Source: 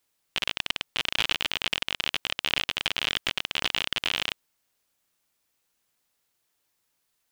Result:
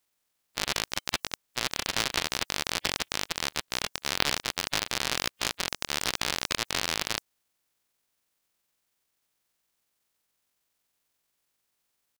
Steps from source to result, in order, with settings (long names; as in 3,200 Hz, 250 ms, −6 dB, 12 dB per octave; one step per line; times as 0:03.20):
ceiling on every frequency bin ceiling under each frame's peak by 19 dB
tempo change 0.6×
level −1.5 dB